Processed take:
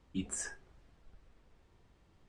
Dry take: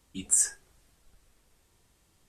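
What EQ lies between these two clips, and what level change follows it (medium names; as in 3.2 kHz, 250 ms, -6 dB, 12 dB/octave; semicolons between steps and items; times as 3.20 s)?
tape spacing loss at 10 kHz 25 dB; +3.0 dB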